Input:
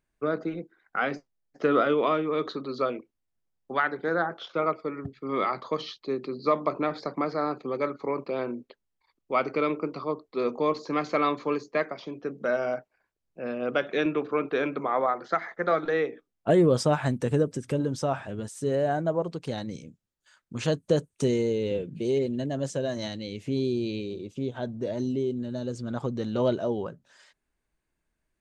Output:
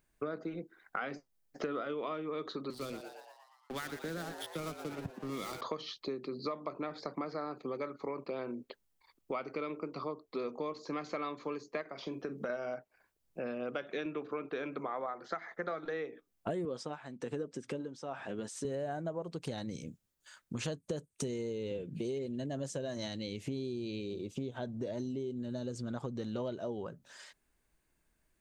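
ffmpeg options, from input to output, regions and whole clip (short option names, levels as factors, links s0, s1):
-filter_complex "[0:a]asettb=1/sr,asplit=3[s0][s1][s2];[s0]atrim=end=2.704[s3];[s1]atrim=start=2.7:end=5.61,asetpts=PTS-STARTPTS,afade=t=in:d=0.004:c=qsin,afade=t=out:st=2.906:d=0.004:c=qsin,aeval=exprs='sgn(val(0))*max(abs(val(0))-0.00841,0)':c=same,acrossover=split=260|3000[s4][s5][s6];[s5]acompressor=threshold=0.00398:ratio=2.5:attack=3.2:release=140:knee=2.83:detection=peak[s7];[s4][s7][s6]amix=inputs=3:normalize=0,asplit=8[s8][s9][s10][s11][s12][s13][s14][s15];[s9]adelay=117,afreqshift=110,volume=0.282[s16];[s10]adelay=234,afreqshift=220,volume=0.172[s17];[s11]adelay=351,afreqshift=330,volume=0.105[s18];[s12]adelay=468,afreqshift=440,volume=0.0638[s19];[s13]adelay=585,afreqshift=550,volume=0.0389[s20];[s14]adelay=702,afreqshift=660,volume=0.0237[s21];[s15]adelay=819,afreqshift=770,volume=0.0145[s22];[s8][s16][s17][s18][s19][s20][s21][s22]amix=inputs=8:normalize=0,atrim=end_sample=128331[s23];[s2]atrim=start=5.606[s24];[s3][s23]acrossfade=d=0.004:c1=hsin:c2=qsin[s25];[s25][s24]acrossfade=d=0.004:c1=qsin:c2=hsin,asettb=1/sr,asplit=3[s26][s27][s28];[s26]atrim=end=11.814[s29];[s27]atrim=start=11.81:end=12.5,asetpts=PTS-STARTPTS,afade=t=in:d=0.004:c=qsin,afade=t=out:st=0.686:d=0.004:c=qsin,acompressor=threshold=0.0316:ratio=2.5:attack=3.2:release=140:knee=1:detection=peak,asplit=2[s30][s31];[s31]adelay=44,volume=0.211[s32];[s30][s32]amix=inputs=2:normalize=0,atrim=end_sample=30429[s33];[s28]atrim=start=12.496[s34];[s29][s33]acrossfade=d=0.004:c1=hsin:c2=qsin[s35];[s35][s34]acrossfade=d=0.004:c1=qsin:c2=hsin,asettb=1/sr,asplit=3[s36][s37][s38];[s36]atrim=end=16.654[s39];[s37]atrim=start=16.65:end=18.65,asetpts=PTS-STARTPTS,afade=t=in:d=0.004:c=qsin,afade=t=out:st=1.996:d=0.004:c=qsin,bandreject=f=610:w=13,tremolo=f=1.1:d=0.84,highpass=220,lowpass=5700[s40];[s38]atrim=start=18.646[s41];[s39][s40]acrossfade=d=0.004:c1=hsin:c2=qsin[s42];[s42][s41]acrossfade=d=0.004:c1=qsin:c2=hsin,highshelf=f=8200:g=8,acompressor=threshold=0.0112:ratio=6,volume=1.41"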